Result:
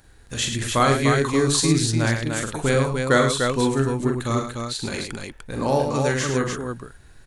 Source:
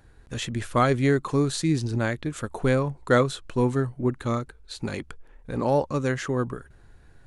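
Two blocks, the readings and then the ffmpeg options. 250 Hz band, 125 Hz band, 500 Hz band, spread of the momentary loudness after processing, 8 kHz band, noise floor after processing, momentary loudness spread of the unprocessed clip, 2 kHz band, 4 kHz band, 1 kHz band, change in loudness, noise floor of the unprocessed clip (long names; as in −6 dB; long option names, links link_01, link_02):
+3.0 dB, +3.0 dB, +3.0 dB, 12 LU, +12.5 dB, −49 dBFS, 12 LU, +6.0 dB, +10.0 dB, +4.5 dB, +4.0 dB, −53 dBFS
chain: -filter_complex "[0:a]highshelf=frequency=2700:gain=11,asplit=2[link_01][link_02];[link_02]aecho=0:1:44|106|297:0.562|0.447|0.596[link_03];[link_01][link_03]amix=inputs=2:normalize=0"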